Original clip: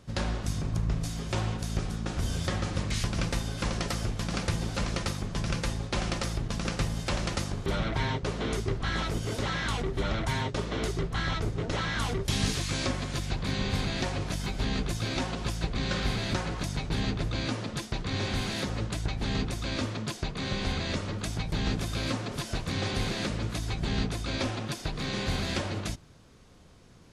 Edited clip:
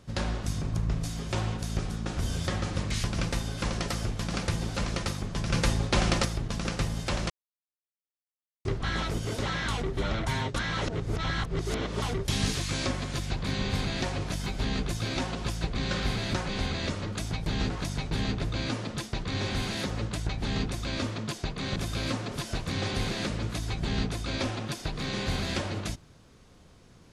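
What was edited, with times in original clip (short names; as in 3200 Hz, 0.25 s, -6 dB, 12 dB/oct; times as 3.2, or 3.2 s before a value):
5.53–6.25 gain +5.5 dB
7.3–8.65 mute
10.56–12.02 reverse
20.55–21.76 move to 16.49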